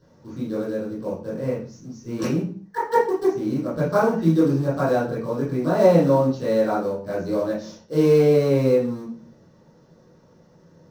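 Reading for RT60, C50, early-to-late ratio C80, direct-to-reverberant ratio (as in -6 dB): 0.45 s, 4.0 dB, 10.0 dB, -11.0 dB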